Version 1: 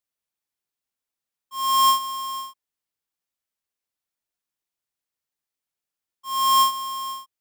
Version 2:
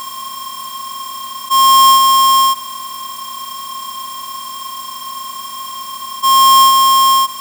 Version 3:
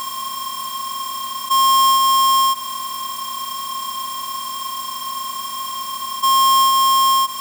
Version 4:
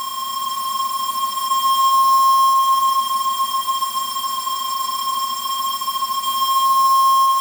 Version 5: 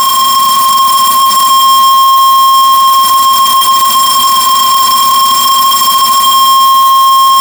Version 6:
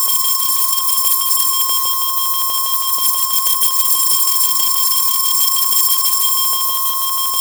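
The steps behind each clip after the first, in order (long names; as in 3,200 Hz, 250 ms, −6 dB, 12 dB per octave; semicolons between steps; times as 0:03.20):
compressor on every frequency bin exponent 0.2; level +8.5 dB
downward compressor 2.5 to 1, threshold −17 dBFS, peak gain reduction 6.5 dB
compressor on every frequency bin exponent 0.4; echo machine with several playback heads 142 ms, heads all three, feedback 67%, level −9 dB; level −6.5 dB
leveller curve on the samples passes 5; level +4.5 dB
first-order pre-emphasis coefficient 0.97; auto-filter notch square 6.2 Hz 610–2,900 Hz; level −2.5 dB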